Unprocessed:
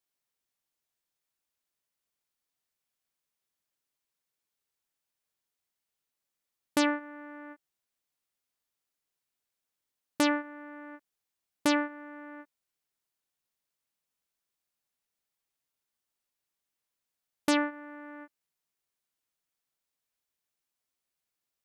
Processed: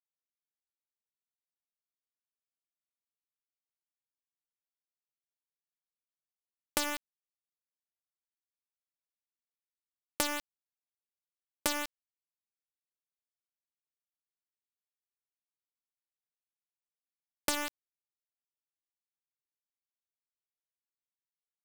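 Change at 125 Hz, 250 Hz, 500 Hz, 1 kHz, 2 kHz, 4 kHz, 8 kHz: n/a, -14.0 dB, -8.0 dB, -6.0 dB, -5.5 dB, -1.0 dB, +4.5 dB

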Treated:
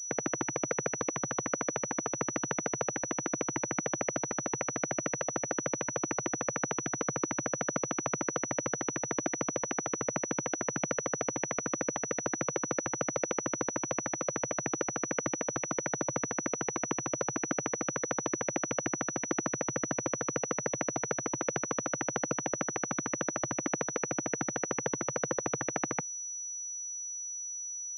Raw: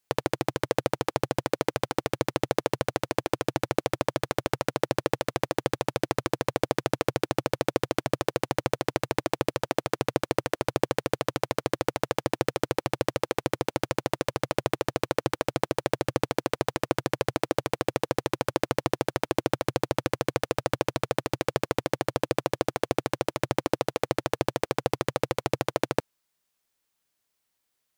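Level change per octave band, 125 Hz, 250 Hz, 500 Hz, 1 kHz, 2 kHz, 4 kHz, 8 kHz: -8.5, -4.5, -7.5, -6.5, -3.5, -13.0, +11.0 dB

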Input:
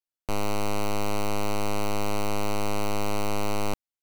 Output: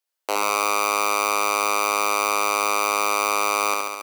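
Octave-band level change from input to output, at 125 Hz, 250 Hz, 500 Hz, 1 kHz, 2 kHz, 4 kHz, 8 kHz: under -20 dB, -5.5 dB, +4.0 dB, +11.0 dB, +13.5 dB, +9.0 dB, +13.0 dB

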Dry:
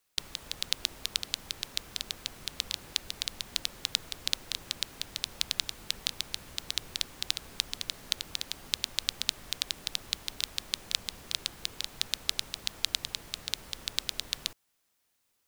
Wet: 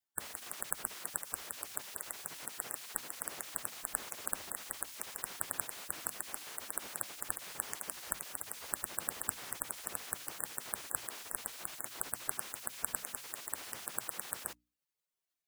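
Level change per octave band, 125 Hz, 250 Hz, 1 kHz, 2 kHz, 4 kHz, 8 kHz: -8.5, -3.5, +3.5, -4.0, -18.0, 0.0 dB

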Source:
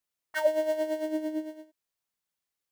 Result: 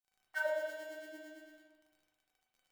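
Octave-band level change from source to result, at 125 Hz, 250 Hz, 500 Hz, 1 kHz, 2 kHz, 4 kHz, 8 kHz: n/a, -22.5 dB, -12.0 dB, -9.0 dB, -1.0 dB, -9.0 dB, -10.0 dB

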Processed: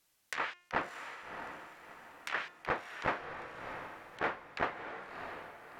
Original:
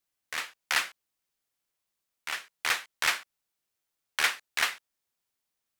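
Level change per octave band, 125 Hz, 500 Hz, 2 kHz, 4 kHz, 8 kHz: n/a, +7.5 dB, -7.5 dB, -16.0 dB, -20.5 dB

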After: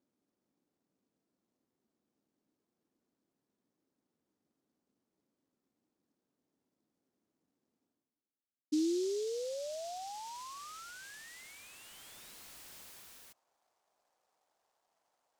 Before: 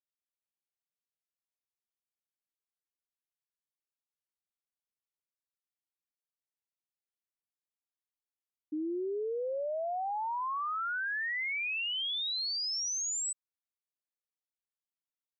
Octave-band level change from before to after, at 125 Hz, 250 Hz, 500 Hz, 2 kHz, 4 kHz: n/a, +3.5 dB, -2.5 dB, -19.0 dB, -16.0 dB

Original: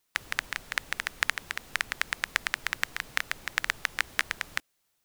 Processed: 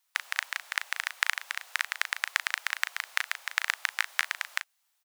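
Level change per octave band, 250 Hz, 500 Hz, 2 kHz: under -35 dB, -7.5 dB, +0.5 dB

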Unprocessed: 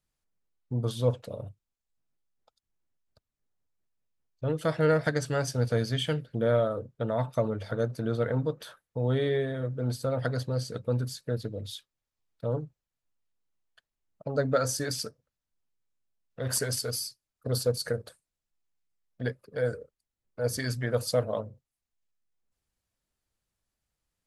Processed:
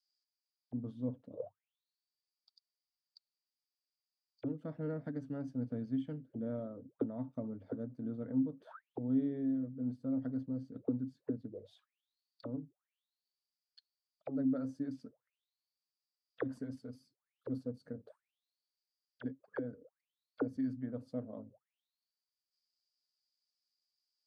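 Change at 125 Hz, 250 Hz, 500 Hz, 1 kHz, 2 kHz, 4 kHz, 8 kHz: -15.5 dB, -1.0 dB, -15.5 dB, -18.0 dB, -20.0 dB, under -30 dB, under -35 dB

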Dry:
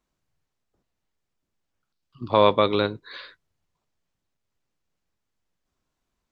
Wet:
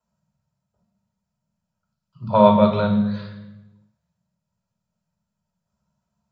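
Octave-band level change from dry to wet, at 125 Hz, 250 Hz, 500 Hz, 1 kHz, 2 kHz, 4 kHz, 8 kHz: +9.5 dB, +11.0 dB, +3.0 dB, +4.0 dB, -3.0 dB, -6.0 dB, n/a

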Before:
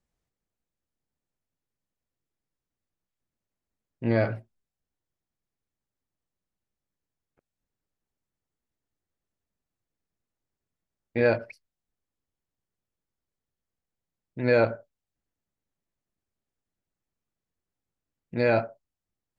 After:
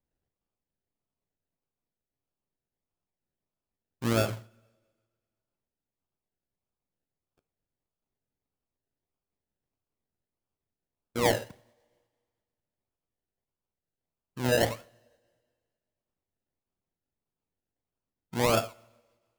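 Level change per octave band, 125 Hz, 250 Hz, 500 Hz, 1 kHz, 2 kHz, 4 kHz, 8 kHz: -2.0 dB, -3.0 dB, -4.5 dB, +2.0 dB, -3.5 dB, +10.5 dB, n/a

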